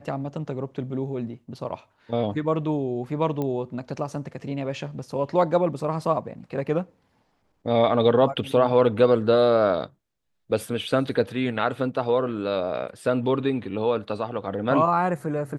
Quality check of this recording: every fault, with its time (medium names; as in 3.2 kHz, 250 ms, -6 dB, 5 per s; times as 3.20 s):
3.42 s: pop -17 dBFS